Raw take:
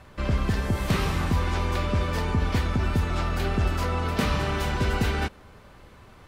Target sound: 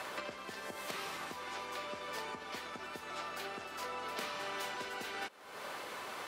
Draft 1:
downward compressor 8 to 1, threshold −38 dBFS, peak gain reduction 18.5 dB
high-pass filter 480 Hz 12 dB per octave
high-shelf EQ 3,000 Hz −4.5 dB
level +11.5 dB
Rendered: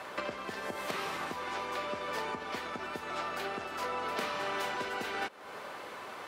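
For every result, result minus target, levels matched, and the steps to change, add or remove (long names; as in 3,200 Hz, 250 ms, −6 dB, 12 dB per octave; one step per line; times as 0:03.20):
downward compressor: peak gain reduction −7 dB; 8,000 Hz band −5.0 dB
change: downward compressor 8 to 1, threshold −46 dBFS, peak gain reduction 25.5 dB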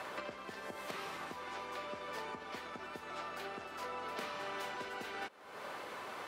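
8,000 Hz band −4.5 dB
change: high-shelf EQ 3,000 Hz +3 dB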